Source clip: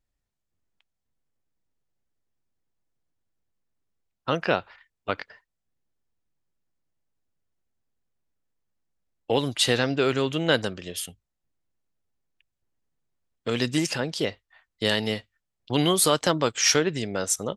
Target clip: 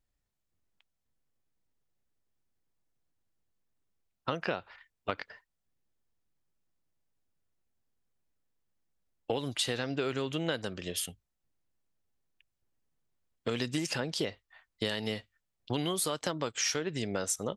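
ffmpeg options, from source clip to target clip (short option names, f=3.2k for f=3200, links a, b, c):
-af "acompressor=threshold=-27dB:ratio=10,volume=-1dB"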